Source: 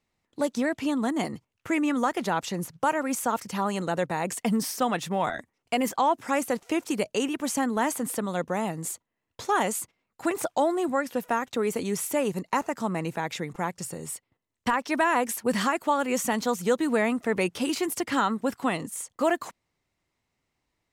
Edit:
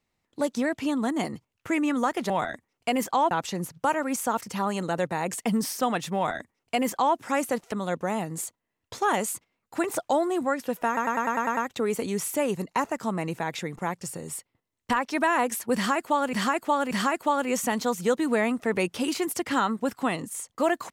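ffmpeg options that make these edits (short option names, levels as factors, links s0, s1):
-filter_complex "[0:a]asplit=13[s0][s1][s2][s3][s4][s5][s6][s7][s8][s9][s10][s11][s12];[s0]atrim=end=2.302[s13];[s1]atrim=start=5.148:end=6.162[s14];[s2]atrim=start=2.298:end=6.712[s15];[s3]atrim=start=8.188:end=11.442[s16];[s4]atrim=start=11.338:end=11.442[s17];[s5]atrim=start=11.338:end=11.442[s18];[s6]atrim=start=11.338:end=11.442[s19];[s7]atrim=start=11.338:end=11.442[s20];[s8]atrim=start=11.338:end=11.442[s21];[s9]atrim=start=11.338:end=11.442[s22];[s10]atrim=start=11.338:end=16.102[s23];[s11]atrim=start=15.518:end=16.102[s24];[s12]atrim=start=15.518[s25];[s13][s14]acrossfade=d=0.004:c1=hsin:c2=hsin[s26];[s26][s15]acrossfade=d=0.004:c1=hsin:c2=hsin[s27];[s27][s16]acrossfade=d=0.004:c1=hsin:c2=hsin[s28];[s28][s17]acrossfade=d=0.004:c1=hsin:c2=hsin[s29];[s29][s18]acrossfade=d=0.004:c1=hsin:c2=hsin[s30];[s30][s19]acrossfade=d=0.004:c1=hsin:c2=hsin[s31];[s31][s20]acrossfade=d=0.004:c1=hsin:c2=hsin[s32];[s32][s21]acrossfade=d=0.004:c1=hsin:c2=hsin[s33];[s33][s22]acrossfade=d=0.004:c1=hsin:c2=hsin[s34];[s34][s23]acrossfade=d=0.004:c1=hsin:c2=hsin[s35];[s35][s24]acrossfade=d=0.004:c1=hsin:c2=hsin[s36];[s36][s25]acrossfade=d=0.004:c1=hsin:c2=hsin"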